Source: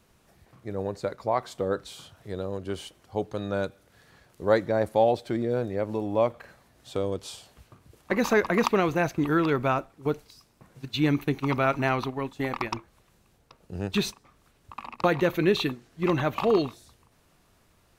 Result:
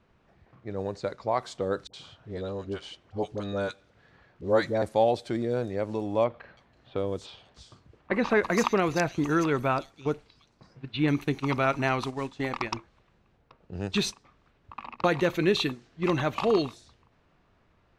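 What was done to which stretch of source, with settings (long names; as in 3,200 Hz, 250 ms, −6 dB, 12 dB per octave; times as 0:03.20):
0:01.87–0:04.82: all-pass dispersion highs, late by 66 ms, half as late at 670 Hz
0:06.24–0:11.08: multiband delay without the direct sound lows, highs 330 ms, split 4,000 Hz
0:12.01–0:12.41: variable-slope delta modulation 64 kbit/s
whole clip: low-pass that shuts in the quiet parts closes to 2,200 Hz, open at −23 dBFS; low-pass filter 7,700 Hz 12 dB per octave; high-shelf EQ 4,800 Hz +8.5 dB; level −1.5 dB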